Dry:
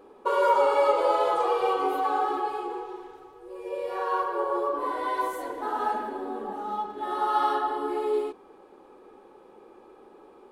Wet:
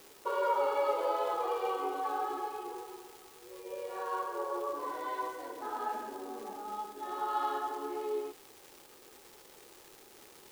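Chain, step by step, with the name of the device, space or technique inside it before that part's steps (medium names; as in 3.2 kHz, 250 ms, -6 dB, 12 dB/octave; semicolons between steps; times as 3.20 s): 78 rpm shellac record (band-pass 200–6000 Hz; crackle 380 per s -34 dBFS; white noise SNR 24 dB); trim -8.5 dB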